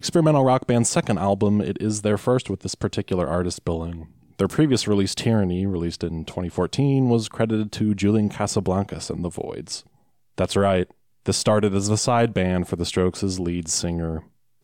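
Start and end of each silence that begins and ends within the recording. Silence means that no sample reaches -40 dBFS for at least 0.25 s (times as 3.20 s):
4.05–4.39 s
9.81–10.38 s
10.91–11.26 s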